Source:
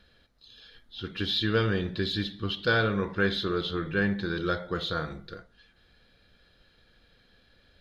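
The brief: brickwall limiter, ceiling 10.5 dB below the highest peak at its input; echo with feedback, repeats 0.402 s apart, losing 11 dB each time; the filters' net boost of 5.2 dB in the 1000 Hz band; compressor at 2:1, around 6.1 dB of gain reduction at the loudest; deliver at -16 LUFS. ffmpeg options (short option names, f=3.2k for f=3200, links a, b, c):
-af "equalizer=f=1k:t=o:g=8,acompressor=threshold=-29dB:ratio=2,alimiter=level_in=1dB:limit=-24dB:level=0:latency=1,volume=-1dB,aecho=1:1:402|804|1206:0.282|0.0789|0.0221,volume=18.5dB"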